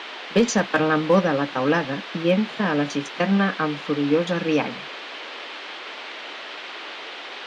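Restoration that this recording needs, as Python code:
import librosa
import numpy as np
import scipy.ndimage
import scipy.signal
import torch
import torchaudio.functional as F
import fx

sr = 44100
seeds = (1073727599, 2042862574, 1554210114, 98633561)

y = fx.fix_declip(x, sr, threshold_db=-9.5)
y = fx.notch(y, sr, hz=3100.0, q=30.0)
y = fx.noise_reduce(y, sr, print_start_s=6.94, print_end_s=7.44, reduce_db=30.0)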